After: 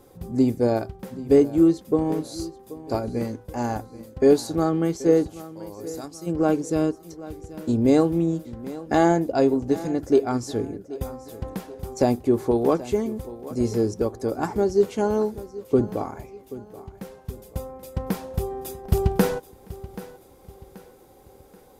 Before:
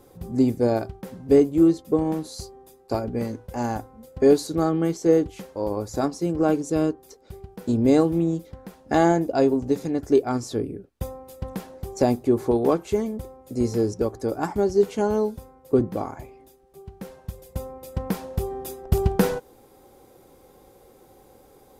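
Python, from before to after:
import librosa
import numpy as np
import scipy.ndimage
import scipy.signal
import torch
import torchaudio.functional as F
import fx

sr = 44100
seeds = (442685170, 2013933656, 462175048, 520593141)

y = fx.pre_emphasis(x, sr, coefficient=0.8, at=(5.27, 6.26), fade=0.02)
y = fx.echo_feedback(y, sr, ms=781, feedback_pct=40, wet_db=-17)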